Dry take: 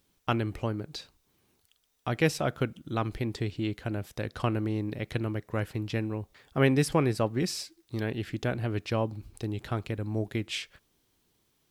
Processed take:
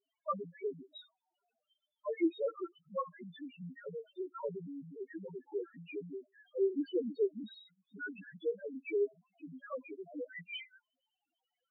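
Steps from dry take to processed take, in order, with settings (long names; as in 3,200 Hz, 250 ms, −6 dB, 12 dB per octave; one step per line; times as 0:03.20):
single-sideband voice off tune −150 Hz 540–3,600 Hz
spectral peaks only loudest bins 1
level +9.5 dB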